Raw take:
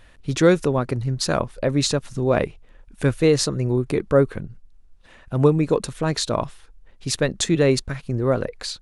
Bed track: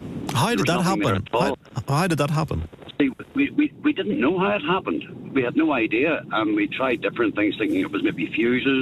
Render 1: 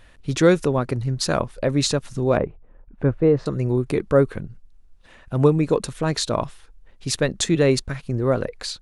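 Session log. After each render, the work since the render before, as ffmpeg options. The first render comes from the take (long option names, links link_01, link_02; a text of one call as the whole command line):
ffmpeg -i in.wav -filter_complex "[0:a]asettb=1/sr,asplit=3[link_01][link_02][link_03];[link_01]atrim=end=2.374[link_04];[link_02]atrim=start=2.37:end=3.46,asetpts=PTS-STARTPTS,afade=type=in:duration=0.004:curve=qsin,afade=type=out:start_time=1.086:duration=0.004:curve=qsin,lowpass=1100[link_05];[link_03]atrim=start=3.456[link_06];[link_04][link_05]acrossfade=duration=0.004:curve1=hsin:curve2=qsin[link_07];[link_07][link_06]acrossfade=duration=0.004:curve1=qsin:curve2=hsin" out.wav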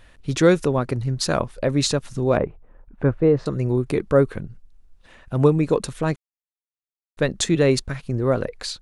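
ffmpeg -i in.wav -filter_complex "[0:a]asettb=1/sr,asplit=3[link_01][link_02][link_03];[link_01]atrim=end=2.414[link_04];[link_02]atrim=start=2.41:end=3.19,asetpts=PTS-STARTPTS,afade=type=in:duration=0.004:curve=qsin,afade=type=out:start_time=0.776:duration=0.004:curve=qsin,equalizer=frequency=1200:width_type=o:width=1.9:gain=3.5[link_05];[link_03]atrim=start=3.186[link_06];[link_04][link_05]acrossfade=duration=0.004:curve1=hsin:curve2=qsin[link_07];[link_07][link_06]acrossfade=duration=0.004:curve1=qsin:curve2=hsin,asplit=3[link_08][link_09][link_10];[link_08]atrim=end=6.16,asetpts=PTS-STARTPTS,afade=type=out:start_time=6.156:duration=0.004:curve=hsin[link_11];[link_09]atrim=start=6.16:end=7.17,asetpts=PTS-STARTPTS,volume=0[link_12];[link_10]atrim=start=7.17,asetpts=PTS-STARTPTS,afade=type=in:duration=0.004:curve=hsin[link_13];[link_11][link_12][link_13]concat=n=3:v=0:a=1" out.wav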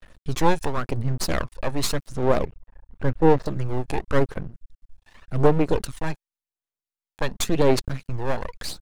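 ffmpeg -i in.wav -af "aeval=exprs='max(val(0),0)':channel_layout=same,aphaser=in_gain=1:out_gain=1:delay=1.2:decay=0.45:speed=0.9:type=sinusoidal" out.wav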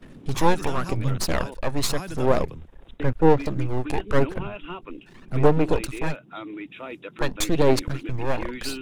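ffmpeg -i in.wav -i bed.wav -filter_complex "[1:a]volume=-14.5dB[link_01];[0:a][link_01]amix=inputs=2:normalize=0" out.wav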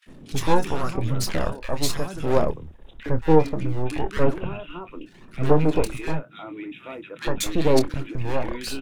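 ffmpeg -i in.wav -filter_complex "[0:a]asplit=2[link_01][link_02];[link_02]adelay=26,volume=-11dB[link_03];[link_01][link_03]amix=inputs=2:normalize=0,acrossover=split=1600[link_04][link_05];[link_04]adelay=60[link_06];[link_06][link_05]amix=inputs=2:normalize=0" out.wav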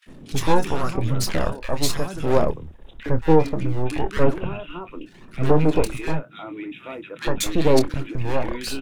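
ffmpeg -i in.wav -af "volume=2dB,alimiter=limit=-3dB:level=0:latency=1" out.wav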